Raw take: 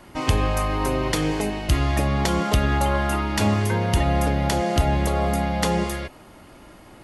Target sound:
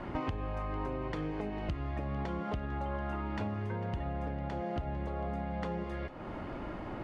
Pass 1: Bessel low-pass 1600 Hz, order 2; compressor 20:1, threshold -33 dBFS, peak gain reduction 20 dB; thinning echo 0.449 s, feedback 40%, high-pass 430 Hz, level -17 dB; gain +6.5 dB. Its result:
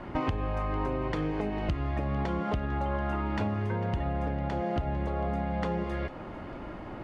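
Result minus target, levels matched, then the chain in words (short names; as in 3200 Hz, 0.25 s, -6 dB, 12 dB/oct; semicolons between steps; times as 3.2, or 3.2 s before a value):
compressor: peak gain reduction -5.5 dB
Bessel low-pass 1600 Hz, order 2; compressor 20:1, threshold -39 dBFS, peak gain reduction 25.5 dB; thinning echo 0.449 s, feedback 40%, high-pass 430 Hz, level -17 dB; gain +6.5 dB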